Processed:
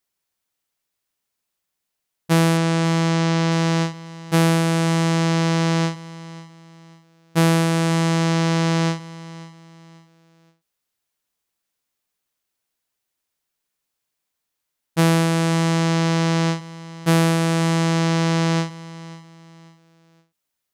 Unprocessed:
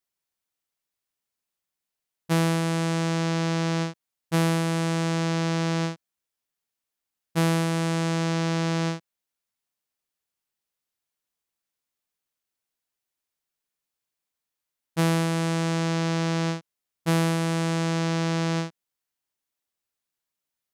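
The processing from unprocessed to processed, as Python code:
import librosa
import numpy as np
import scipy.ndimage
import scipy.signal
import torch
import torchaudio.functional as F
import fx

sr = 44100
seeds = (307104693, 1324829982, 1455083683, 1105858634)

y = fx.lowpass(x, sr, hz=7900.0, slope=12, at=(2.57, 3.52))
y = fx.echo_feedback(y, sr, ms=541, feedback_pct=34, wet_db=-18.0)
y = fx.end_taper(y, sr, db_per_s=170.0)
y = y * librosa.db_to_amplitude(6.0)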